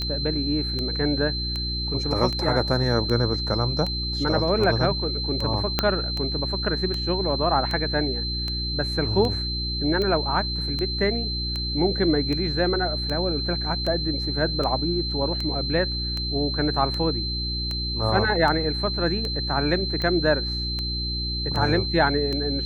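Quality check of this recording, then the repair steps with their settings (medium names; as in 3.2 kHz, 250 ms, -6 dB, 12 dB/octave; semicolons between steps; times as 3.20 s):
hum 60 Hz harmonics 6 -30 dBFS
tick 78 rpm -16 dBFS
whine 4.1 kHz -28 dBFS
5.79 s: pop -5 dBFS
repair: de-click; de-hum 60 Hz, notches 6; band-stop 4.1 kHz, Q 30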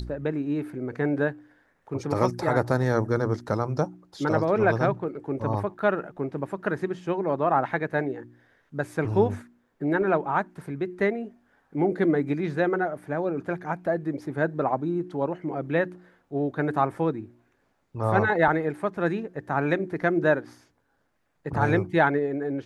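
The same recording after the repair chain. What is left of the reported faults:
5.79 s: pop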